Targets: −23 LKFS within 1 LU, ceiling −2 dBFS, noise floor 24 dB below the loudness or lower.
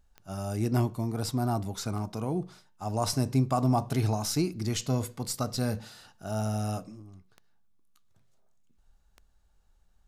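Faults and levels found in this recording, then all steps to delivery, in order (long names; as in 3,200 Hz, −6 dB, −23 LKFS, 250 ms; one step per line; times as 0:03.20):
number of clicks 6; integrated loudness −30.5 LKFS; sample peak −14.5 dBFS; target loudness −23.0 LKFS
→ click removal
level +7.5 dB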